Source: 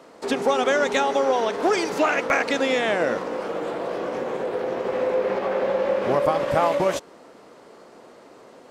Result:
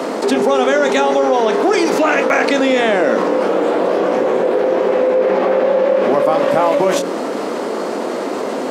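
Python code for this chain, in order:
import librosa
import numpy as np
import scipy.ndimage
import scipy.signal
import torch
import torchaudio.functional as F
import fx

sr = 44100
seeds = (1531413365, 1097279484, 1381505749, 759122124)

y = scipy.signal.sosfilt(scipy.signal.butter(4, 210.0, 'highpass', fs=sr, output='sos'), x)
y = fx.low_shelf(y, sr, hz=440.0, db=9.0)
y = fx.hum_notches(y, sr, base_hz=60, count=9)
y = fx.doubler(y, sr, ms=27.0, db=-12)
y = fx.env_flatten(y, sr, amount_pct=70)
y = y * 10.0 ** (1.5 / 20.0)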